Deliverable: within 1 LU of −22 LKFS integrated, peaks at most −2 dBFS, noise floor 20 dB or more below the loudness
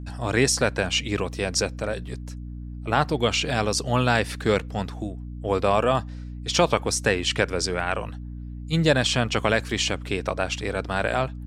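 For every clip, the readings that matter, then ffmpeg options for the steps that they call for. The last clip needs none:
mains hum 60 Hz; hum harmonics up to 300 Hz; level of the hum −33 dBFS; integrated loudness −24.0 LKFS; sample peak −5.0 dBFS; target loudness −22.0 LKFS
→ -af "bandreject=frequency=60:width_type=h:width=6,bandreject=frequency=120:width_type=h:width=6,bandreject=frequency=180:width_type=h:width=6,bandreject=frequency=240:width_type=h:width=6,bandreject=frequency=300:width_type=h:width=6"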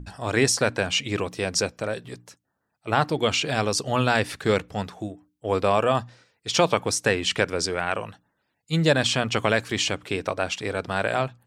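mains hum none found; integrated loudness −24.0 LKFS; sample peak −5.0 dBFS; target loudness −22.0 LKFS
→ -af "volume=2dB"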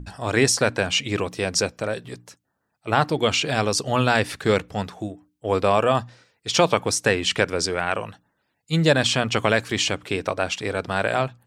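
integrated loudness −22.0 LKFS; sample peak −3.0 dBFS; background noise floor −75 dBFS

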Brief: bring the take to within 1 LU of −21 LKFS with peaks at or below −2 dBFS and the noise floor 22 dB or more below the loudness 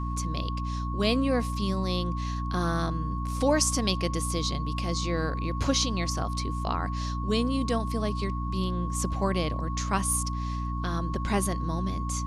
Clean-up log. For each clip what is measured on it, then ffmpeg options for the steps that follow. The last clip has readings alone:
mains hum 60 Hz; hum harmonics up to 300 Hz; level of the hum −29 dBFS; interfering tone 1,100 Hz; level of the tone −36 dBFS; integrated loudness −28.5 LKFS; sample peak −10.0 dBFS; target loudness −21.0 LKFS
→ -af "bandreject=frequency=60:width_type=h:width=6,bandreject=frequency=120:width_type=h:width=6,bandreject=frequency=180:width_type=h:width=6,bandreject=frequency=240:width_type=h:width=6,bandreject=frequency=300:width_type=h:width=6"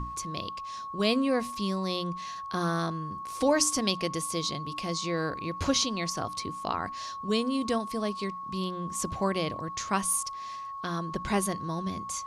mains hum none found; interfering tone 1,100 Hz; level of the tone −36 dBFS
→ -af "bandreject=frequency=1100:width=30"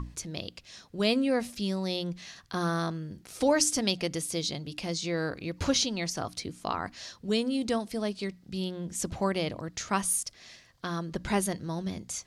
interfering tone none found; integrated loudness −31.0 LKFS; sample peak −10.5 dBFS; target loudness −21.0 LKFS
→ -af "volume=10dB,alimiter=limit=-2dB:level=0:latency=1"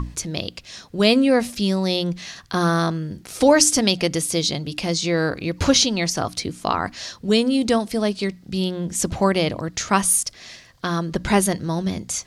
integrated loudness −21.0 LKFS; sample peak −2.0 dBFS; background noise floor −48 dBFS

